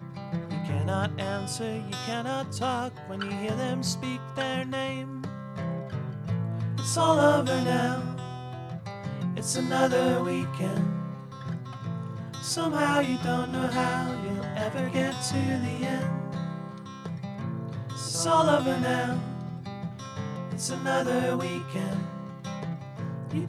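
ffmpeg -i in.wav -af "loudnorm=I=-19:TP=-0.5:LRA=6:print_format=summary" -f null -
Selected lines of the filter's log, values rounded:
Input Integrated:    -29.4 LUFS
Input True Peak:      -8.6 dBTP
Input LRA:             4.7 LU
Input Threshold:     -39.4 LUFS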